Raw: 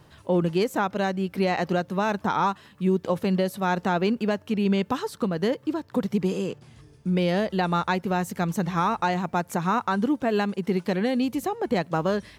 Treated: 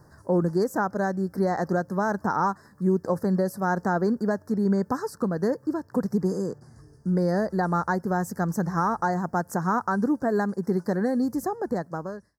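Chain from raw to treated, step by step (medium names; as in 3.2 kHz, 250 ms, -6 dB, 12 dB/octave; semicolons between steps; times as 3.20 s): fade out at the end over 0.90 s; elliptic band-stop 1.7–4.9 kHz, stop band 80 dB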